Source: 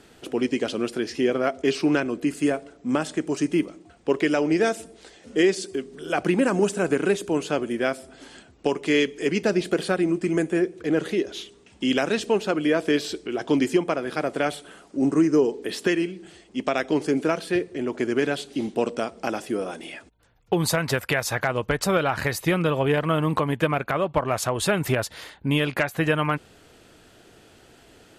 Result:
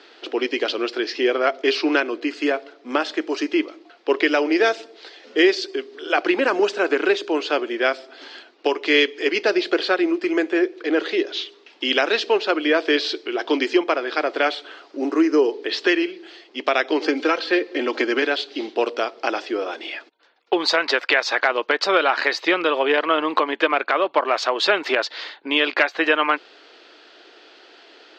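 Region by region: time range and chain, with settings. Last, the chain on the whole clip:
17.02–18.22 s: median filter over 3 samples + comb 3.8 ms, depth 49% + three bands compressed up and down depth 100%
whole clip: elliptic band-pass 320–4600 Hz, stop band 40 dB; tilt EQ +2 dB/octave; trim +6 dB

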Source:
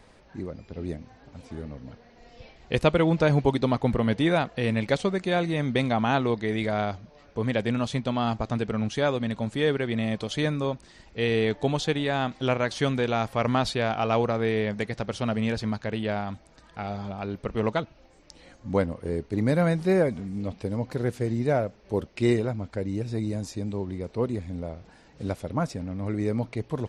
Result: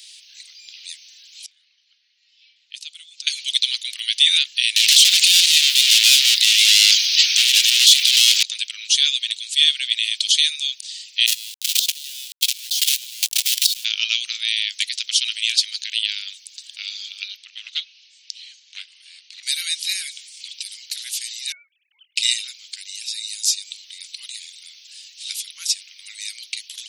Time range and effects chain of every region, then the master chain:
1.46–3.27 s: level-controlled noise filter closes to 1.7 kHz, open at -17 dBFS + compression 2.5:1, threshold -37 dBFS + peaking EQ 2.2 kHz -10 dB 2.2 oct
4.76–8.43 s: bass shelf 410 Hz +11 dB + overdrive pedal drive 36 dB, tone 7.2 kHz, clips at -4.5 dBFS + short-mantissa float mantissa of 6-bit
11.26–13.85 s: companded quantiser 2-bit + bass shelf 200 Hz +9 dB + level held to a coarse grid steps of 22 dB
17.36–19.43 s: distance through air 130 m + transformer saturation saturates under 670 Hz
21.52–22.16 s: formants replaced by sine waves + treble shelf 2.4 kHz -12 dB
whole clip: steep high-pass 3 kHz 36 dB/octave; loudness maximiser +25 dB; trim -1 dB

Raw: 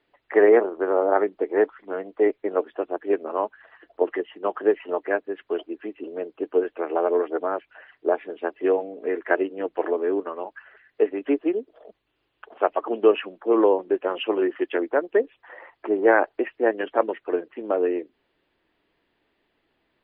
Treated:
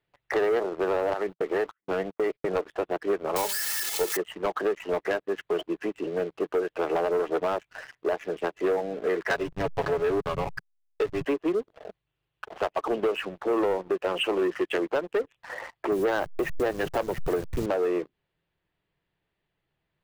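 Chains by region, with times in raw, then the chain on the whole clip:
1.13–2.50 s: gate -41 dBFS, range -30 dB + treble shelf 2.3 kHz +8 dB + compression 10:1, threshold -23 dBFS
3.36–4.17 s: zero-crossing glitches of -15 dBFS + comb 2.3 ms, depth 51% + de-hum 198.5 Hz, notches 3
9.30–11.25 s: tilt EQ +3 dB/octave + comb 7.2 ms, depth 76% + hysteresis with a dead band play -29 dBFS
15.92–17.66 s: send-on-delta sampling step -40 dBFS + bass shelf 190 Hz +9.5 dB
whole clip: resonant low shelf 200 Hz +7 dB, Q 3; compression 5:1, threshold -26 dBFS; waveshaping leveller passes 3; trim -4.5 dB

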